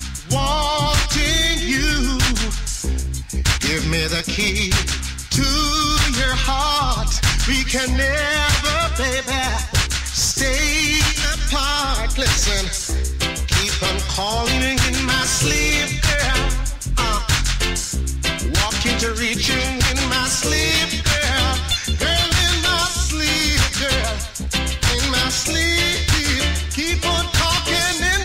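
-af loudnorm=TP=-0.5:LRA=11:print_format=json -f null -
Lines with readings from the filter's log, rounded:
"input_i" : "-18.2",
"input_tp" : "-8.3",
"input_lra" : "1.7",
"input_thresh" : "-28.2",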